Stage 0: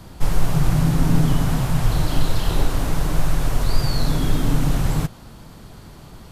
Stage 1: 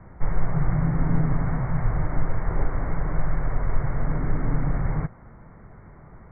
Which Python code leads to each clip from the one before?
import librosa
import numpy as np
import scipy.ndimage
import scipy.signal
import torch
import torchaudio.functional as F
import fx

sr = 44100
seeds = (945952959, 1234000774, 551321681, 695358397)

y = scipy.signal.sosfilt(scipy.signal.cheby1(8, 1.0, 2200.0, 'lowpass', fs=sr, output='sos'), x)
y = fx.peak_eq(y, sr, hz=280.0, db=-4.5, octaves=0.73)
y = y * 10.0 ** (-3.5 / 20.0)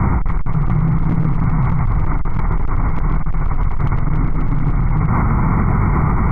y = x + 0.67 * np.pad(x, (int(0.9 * sr / 1000.0), 0))[:len(x)]
y = fx.clip_asym(y, sr, top_db=-16.0, bottom_db=-9.0)
y = fx.env_flatten(y, sr, amount_pct=100)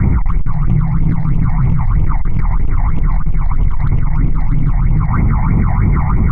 y = fx.phaser_stages(x, sr, stages=8, low_hz=370.0, high_hz=1500.0, hz=3.1, feedback_pct=45)
y = y * 10.0 ** (1.5 / 20.0)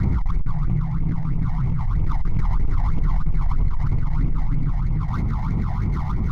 y = scipy.ndimage.median_filter(x, 15, mode='constant')
y = fx.rider(y, sr, range_db=10, speed_s=0.5)
y = y + 10.0 ** (-22.0 / 20.0) * np.pad(y, (int(525 * sr / 1000.0), 0))[:len(y)]
y = y * 10.0 ** (-8.5 / 20.0)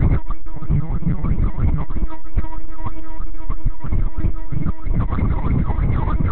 y = fx.lpc_vocoder(x, sr, seeds[0], excitation='pitch_kept', order=8)
y = y * 10.0 ** (5.0 / 20.0)